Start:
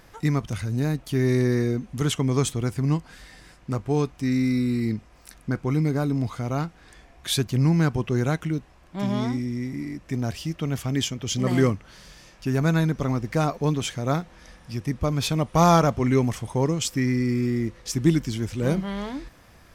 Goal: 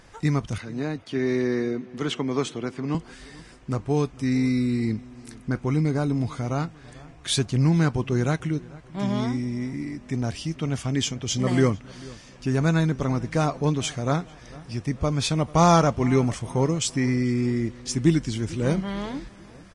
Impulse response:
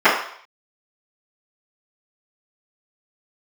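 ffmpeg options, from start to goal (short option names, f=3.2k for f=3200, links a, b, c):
-filter_complex "[0:a]asettb=1/sr,asplit=3[a][b][c];[a]atrim=end=0.584[d];[b]atrim=start=0.58:end=2.95,asetpts=PTS-STARTPTS,afade=t=in:d=0.004:c=qsin,afade=t=out:st=2.366:d=0.004:c=qsin,acrossover=split=180 5000:gain=0.0794 1 0.158[e][f][g];[e][f][g]amix=inputs=3:normalize=0[h];[c]atrim=start=2.946[i];[d][h]acrossfade=d=0.004:c1=hsin:c2=qsin[j];[j][i]acrossfade=d=0.004:c1=qsin:c2=hsin,asplit=2[k][l];[l]adelay=444,lowpass=f=2.4k:p=1,volume=-21dB,asplit=2[m][n];[n]adelay=444,lowpass=f=2.4k:p=1,volume=0.49,asplit=2[o][p];[p]adelay=444,lowpass=f=2.4k:p=1,volume=0.49,asplit=2[q][r];[r]adelay=444,lowpass=f=2.4k:p=1,volume=0.49[s];[k][m][o][q][s]amix=inputs=5:normalize=0" -ar 22050 -c:a libvorbis -b:a 32k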